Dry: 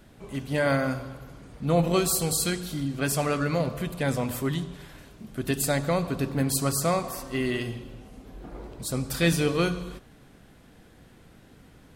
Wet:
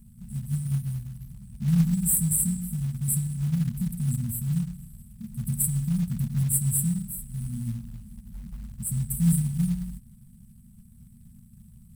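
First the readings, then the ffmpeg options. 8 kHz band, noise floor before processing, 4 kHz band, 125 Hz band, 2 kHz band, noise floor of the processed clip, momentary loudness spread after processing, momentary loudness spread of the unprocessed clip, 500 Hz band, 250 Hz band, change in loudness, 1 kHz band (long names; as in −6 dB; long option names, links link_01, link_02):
+3.0 dB, −54 dBFS, below −15 dB, +4.5 dB, below −20 dB, −52 dBFS, 20 LU, 19 LU, below −35 dB, 0.0 dB, 0.0 dB, below −25 dB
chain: -af "afftfilt=real='re*(1-between(b*sr/4096,240,7600))':imag='im*(1-between(b*sr/4096,240,7600))':win_size=4096:overlap=0.75,acrusher=bits=6:mode=log:mix=0:aa=0.000001,volume=4.5dB"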